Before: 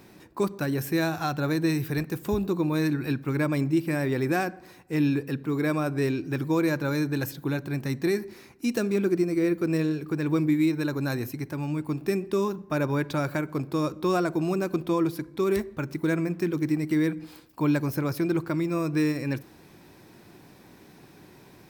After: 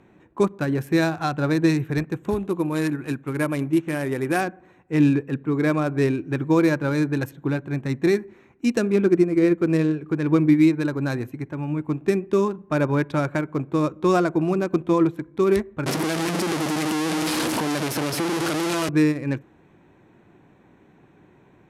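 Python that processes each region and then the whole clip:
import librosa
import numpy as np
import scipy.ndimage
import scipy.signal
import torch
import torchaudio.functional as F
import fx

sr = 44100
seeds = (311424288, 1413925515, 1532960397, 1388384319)

y = fx.chain(x, sr, fx.low_shelf(hz=270.0, db=-5.5),
    fx.resample_bad(factor=4, down='none', up='hold'), at=(2.3, 4.41))
y = fx.chain(y, sr, fx.clip_1bit(),
    fx.highpass(hz=180.0, slope=12),
    fx.band_squash(depth_pct=70), at=(15.86, 18.89))
y = fx.wiener(y, sr, points=9)
y = scipy.signal.sosfilt(scipy.signal.butter(4, 12000.0, 'lowpass', fs=sr, output='sos'), y)
y = fx.upward_expand(y, sr, threshold_db=-39.0, expansion=1.5)
y = y * 10.0 ** (7.5 / 20.0)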